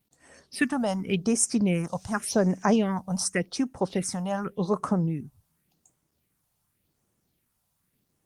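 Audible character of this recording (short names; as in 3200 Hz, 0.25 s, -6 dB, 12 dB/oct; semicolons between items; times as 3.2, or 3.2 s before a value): phasing stages 4, 0.88 Hz, lowest notch 340–3800 Hz; a quantiser's noise floor 12-bit, dither none; Opus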